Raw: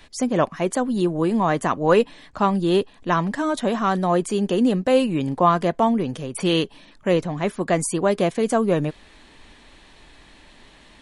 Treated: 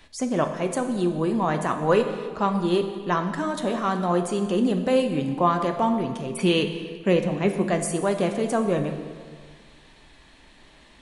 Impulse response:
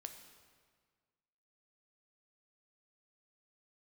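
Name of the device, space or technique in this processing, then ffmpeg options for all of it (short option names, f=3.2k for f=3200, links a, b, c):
stairwell: -filter_complex "[0:a]asettb=1/sr,asplit=3[a][b][c];[a]atrim=end=6.254[d];[b]atrim=start=6.25:end=7.65,asetpts=PTS-STARTPTS,afade=t=in:d=0.004:c=qsin,afade=t=out:st=1.396:d=0.004:c=qsin,equalizer=f=200:t=o:w=0.33:g=8,equalizer=f=400:t=o:w=0.33:g=6,equalizer=f=2.5k:t=o:w=0.33:g=7[e];[c]atrim=start=7.646[f];[d][e]acrossfade=d=0.004:c1=hsin:c2=qsin[g];[g][f]acrossfade=d=0.004:c1=qsin:c2=hsin[h];[1:a]atrim=start_sample=2205[i];[h][i]afir=irnorm=-1:irlink=0,volume=1.5dB"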